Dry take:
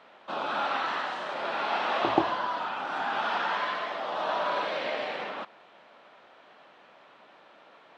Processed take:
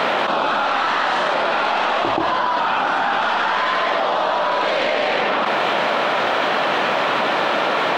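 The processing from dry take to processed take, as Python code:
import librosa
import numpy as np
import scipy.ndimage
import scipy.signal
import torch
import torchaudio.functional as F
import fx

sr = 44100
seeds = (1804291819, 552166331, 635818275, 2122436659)

y = fx.tracing_dist(x, sr, depth_ms=0.026)
y = fx.env_flatten(y, sr, amount_pct=100)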